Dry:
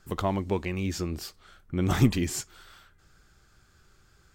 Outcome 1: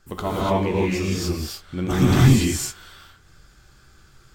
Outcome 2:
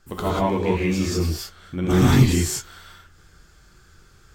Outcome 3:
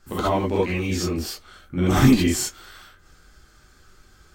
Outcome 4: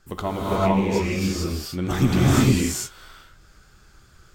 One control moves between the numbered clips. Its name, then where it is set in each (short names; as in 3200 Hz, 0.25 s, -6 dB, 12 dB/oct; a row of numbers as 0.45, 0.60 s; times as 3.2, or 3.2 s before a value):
non-linear reverb, gate: 320, 210, 90, 480 ms